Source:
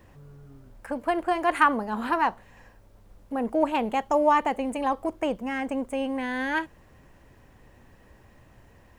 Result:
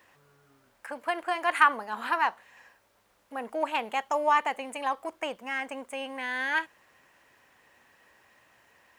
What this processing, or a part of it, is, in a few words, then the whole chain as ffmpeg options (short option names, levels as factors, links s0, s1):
filter by subtraction: -filter_complex "[0:a]asplit=2[s0][s1];[s1]lowpass=1800,volume=-1[s2];[s0][s2]amix=inputs=2:normalize=0"